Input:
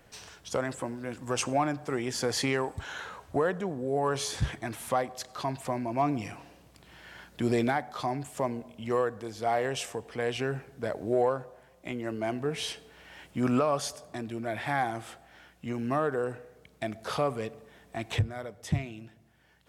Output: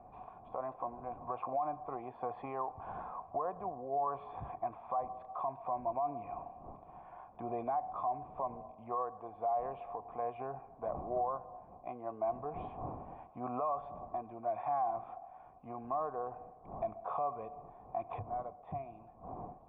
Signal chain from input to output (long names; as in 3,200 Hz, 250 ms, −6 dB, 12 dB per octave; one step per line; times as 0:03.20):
wind on the microphone 220 Hz −41 dBFS
in parallel at 0 dB: downward compressor, threshold −35 dBFS, peak gain reduction 14 dB
on the sum: formant resonators in series a
dynamic equaliser 770 Hz, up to −5 dB, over −47 dBFS, Q 3.8
brickwall limiter −33.5 dBFS, peak gain reduction 11 dB
level +7 dB